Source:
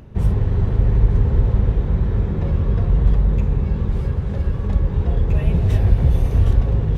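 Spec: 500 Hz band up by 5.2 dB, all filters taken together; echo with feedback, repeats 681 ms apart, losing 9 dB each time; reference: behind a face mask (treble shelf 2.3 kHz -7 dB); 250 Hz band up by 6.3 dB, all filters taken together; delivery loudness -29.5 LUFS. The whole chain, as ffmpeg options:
-af "equalizer=f=250:t=o:g=9,equalizer=f=500:t=o:g=3.5,highshelf=f=2300:g=-7,aecho=1:1:681|1362|2043|2724:0.355|0.124|0.0435|0.0152,volume=0.251"

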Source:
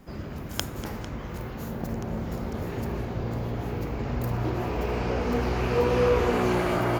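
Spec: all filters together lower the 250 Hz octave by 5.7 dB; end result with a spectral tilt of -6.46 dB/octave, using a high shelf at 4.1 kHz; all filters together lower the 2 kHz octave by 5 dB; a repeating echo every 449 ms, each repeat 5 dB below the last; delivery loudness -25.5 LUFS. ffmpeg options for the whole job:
-af "equalizer=f=250:t=o:g=-8,equalizer=f=2000:t=o:g=-4.5,highshelf=f=4100:g=-9,aecho=1:1:449|898|1347|1796|2245|2694|3143:0.562|0.315|0.176|0.0988|0.0553|0.031|0.0173,volume=1.58"

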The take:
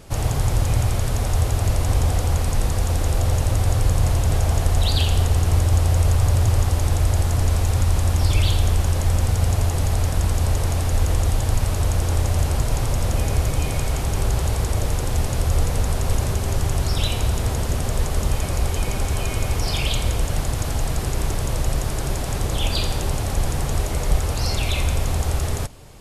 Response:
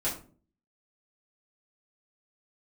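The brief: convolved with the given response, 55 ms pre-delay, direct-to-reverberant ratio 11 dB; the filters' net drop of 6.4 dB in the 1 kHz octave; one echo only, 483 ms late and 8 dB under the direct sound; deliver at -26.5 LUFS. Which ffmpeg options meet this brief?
-filter_complex "[0:a]equalizer=f=1000:t=o:g=-9,aecho=1:1:483:0.398,asplit=2[s0][s1];[1:a]atrim=start_sample=2205,adelay=55[s2];[s1][s2]afir=irnorm=-1:irlink=0,volume=0.133[s3];[s0][s3]amix=inputs=2:normalize=0,volume=0.501"

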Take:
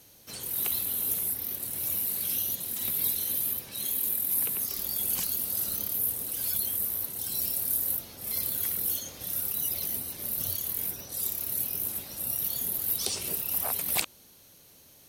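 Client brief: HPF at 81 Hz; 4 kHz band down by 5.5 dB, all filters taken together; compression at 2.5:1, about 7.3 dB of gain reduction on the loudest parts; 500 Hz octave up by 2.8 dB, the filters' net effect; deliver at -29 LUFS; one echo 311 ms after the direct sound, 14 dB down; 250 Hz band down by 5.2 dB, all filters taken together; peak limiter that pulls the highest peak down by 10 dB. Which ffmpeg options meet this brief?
-af "highpass=81,equalizer=f=250:t=o:g=-9,equalizer=f=500:t=o:g=6,equalizer=f=4000:t=o:g=-7,acompressor=threshold=0.0178:ratio=2.5,alimiter=level_in=1.19:limit=0.0631:level=0:latency=1,volume=0.841,aecho=1:1:311:0.2,volume=2.37"

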